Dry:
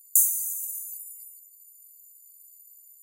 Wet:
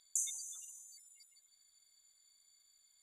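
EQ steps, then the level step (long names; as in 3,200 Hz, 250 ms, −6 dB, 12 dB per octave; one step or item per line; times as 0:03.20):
transistor ladder low-pass 3,900 Hz, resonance 75%
parametric band 2,900 Hz −8 dB 0.36 octaves
+18.0 dB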